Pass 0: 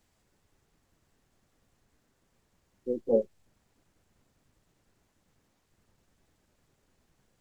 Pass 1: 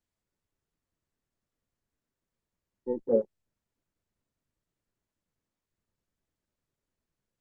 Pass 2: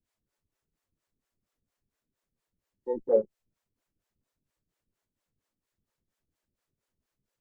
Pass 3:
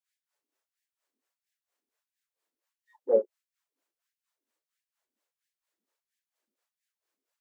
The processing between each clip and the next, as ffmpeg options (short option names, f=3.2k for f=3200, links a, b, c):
-af "bandreject=f=780:w=12,afwtdn=0.01"
-filter_complex "[0:a]acrossover=split=420[a][b];[a]aeval=exprs='val(0)*(1-1/2+1/2*cos(2*PI*4.3*n/s))':c=same[c];[b]aeval=exprs='val(0)*(1-1/2-1/2*cos(2*PI*4.3*n/s))':c=same[d];[c][d]amix=inputs=2:normalize=0,volume=6dB"
-af "afftfilt=real='re*gte(b*sr/1024,210*pow(1600/210,0.5+0.5*sin(2*PI*1.5*pts/sr)))':imag='im*gte(b*sr/1024,210*pow(1600/210,0.5+0.5*sin(2*PI*1.5*pts/sr)))':win_size=1024:overlap=0.75"